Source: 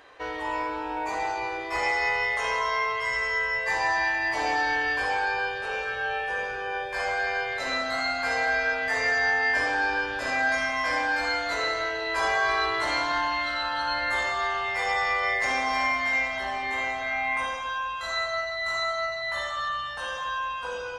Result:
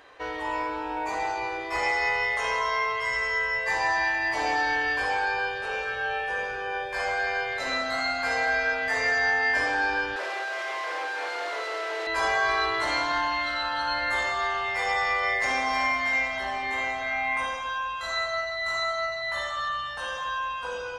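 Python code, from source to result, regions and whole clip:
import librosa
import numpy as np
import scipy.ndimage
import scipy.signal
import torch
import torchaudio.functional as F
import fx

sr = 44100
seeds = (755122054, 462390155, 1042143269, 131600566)

y = fx.chain(x, sr, fx.clip_1bit(),
    fx.steep_highpass(hz=340.0, slope=72),
    fx.spacing_loss(db_at_10k=25), at=(10.16, 12.07))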